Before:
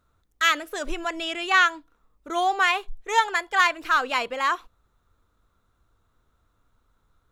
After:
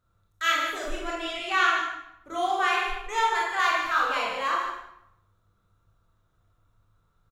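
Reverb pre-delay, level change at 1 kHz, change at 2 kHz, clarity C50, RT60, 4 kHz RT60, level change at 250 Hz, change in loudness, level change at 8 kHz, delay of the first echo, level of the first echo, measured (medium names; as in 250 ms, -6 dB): 22 ms, -1.5 dB, -3.0 dB, 0.0 dB, 0.80 s, 0.65 s, -3.0 dB, -2.5 dB, -3.5 dB, 147 ms, -7.5 dB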